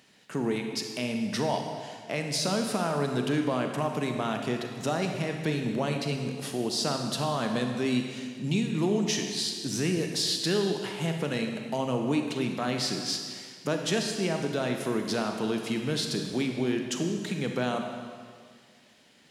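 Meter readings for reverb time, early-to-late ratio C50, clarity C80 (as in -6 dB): 1.9 s, 4.5 dB, 6.0 dB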